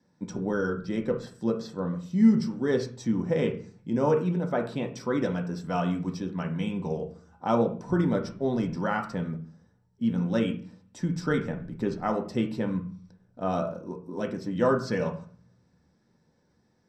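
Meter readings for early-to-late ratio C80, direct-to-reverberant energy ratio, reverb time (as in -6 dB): 16.0 dB, 3.0 dB, 0.45 s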